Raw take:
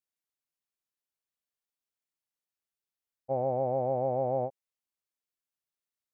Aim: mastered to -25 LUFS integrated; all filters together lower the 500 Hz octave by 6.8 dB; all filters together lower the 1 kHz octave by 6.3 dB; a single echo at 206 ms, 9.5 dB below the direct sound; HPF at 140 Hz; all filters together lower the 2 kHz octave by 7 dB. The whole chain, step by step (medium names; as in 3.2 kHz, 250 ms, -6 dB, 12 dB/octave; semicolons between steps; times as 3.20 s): high-pass 140 Hz; peaking EQ 500 Hz -6 dB; peaking EQ 1 kHz -5 dB; peaking EQ 2 kHz -7 dB; delay 206 ms -9.5 dB; trim +11.5 dB